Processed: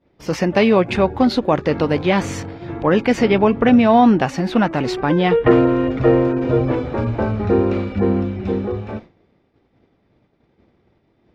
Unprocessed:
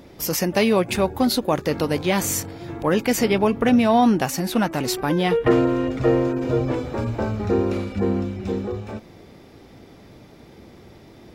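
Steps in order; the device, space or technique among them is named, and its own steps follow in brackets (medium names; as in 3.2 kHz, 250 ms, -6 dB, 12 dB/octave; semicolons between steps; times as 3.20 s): hearing-loss simulation (low-pass 3.1 kHz 12 dB/octave; expander -33 dBFS); trim +4.5 dB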